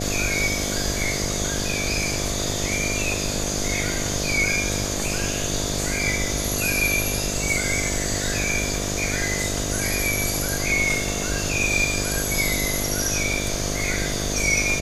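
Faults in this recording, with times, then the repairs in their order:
buzz 50 Hz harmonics 14 -29 dBFS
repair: de-hum 50 Hz, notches 14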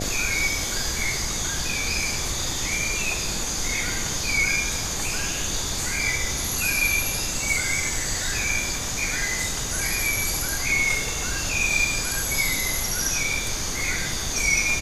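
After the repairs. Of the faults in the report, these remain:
none

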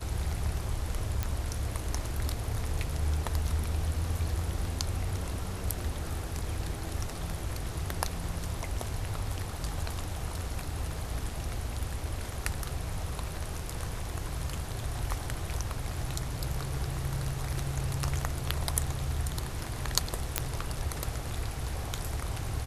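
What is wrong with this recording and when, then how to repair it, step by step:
1.23 pop -15 dBFS
20.38 pop -7 dBFS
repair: de-click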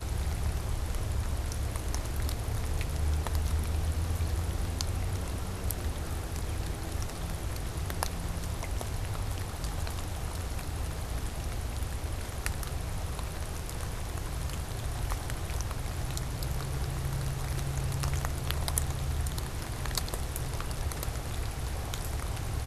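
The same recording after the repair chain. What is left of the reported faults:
none

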